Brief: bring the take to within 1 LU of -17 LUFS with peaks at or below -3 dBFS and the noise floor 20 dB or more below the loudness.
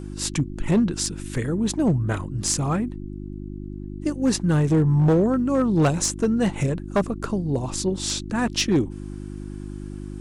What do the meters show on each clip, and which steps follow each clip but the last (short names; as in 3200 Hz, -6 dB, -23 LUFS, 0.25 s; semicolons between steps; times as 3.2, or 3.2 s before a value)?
clipped 1.0%; flat tops at -13.5 dBFS; hum 50 Hz; harmonics up to 350 Hz; hum level -32 dBFS; loudness -23.0 LUFS; peak -13.5 dBFS; loudness target -17.0 LUFS
-> clip repair -13.5 dBFS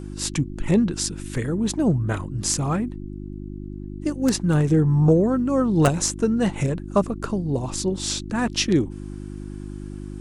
clipped 0.0%; hum 50 Hz; harmonics up to 350 Hz; hum level -32 dBFS
-> de-hum 50 Hz, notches 7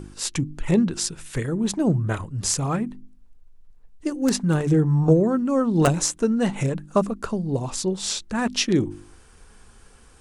hum none; loudness -23.0 LUFS; peak -4.0 dBFS; loudness target -17.0 LUFS
-> gain +6 dB; limiter -3 dBFS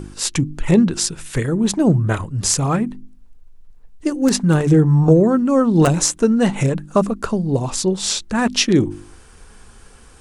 loudness -17.5 LUFS; peak -3.0 dBFS; noise floor -45 dBFS